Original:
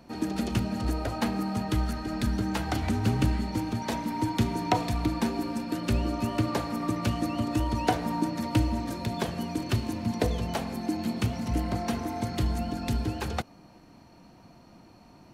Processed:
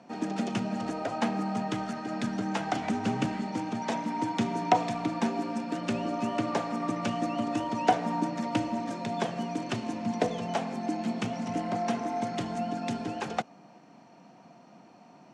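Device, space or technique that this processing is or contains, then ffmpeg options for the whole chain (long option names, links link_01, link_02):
television speaker: -af "highpass=frequency=160:width=0.5412,highpass=frequency=160:width=1.3066,equalizer=frequency=330:width_type=q:width=4:gain=-4,equalizer=frequency=720:width_type=q:width=4:gain=5,equalizer=frequency=4300:width_type=q:width=4:gain=-7,lowpass=frequency=7500:width=0.5412,lowpass=frequency=7500:width=1.3066"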